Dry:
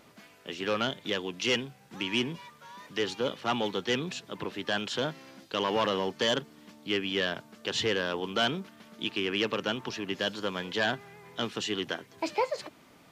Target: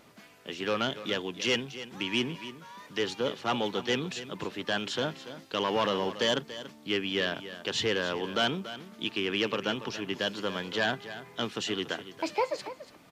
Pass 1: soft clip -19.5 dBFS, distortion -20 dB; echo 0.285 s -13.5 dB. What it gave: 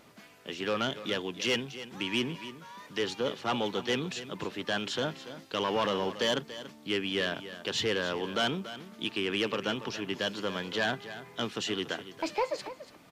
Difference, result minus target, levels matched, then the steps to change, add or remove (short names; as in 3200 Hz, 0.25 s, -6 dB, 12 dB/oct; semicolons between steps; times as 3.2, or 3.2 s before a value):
soft clip: distortion +21 dB
change: soft clip -7.5 dBFS, distortion -41 dB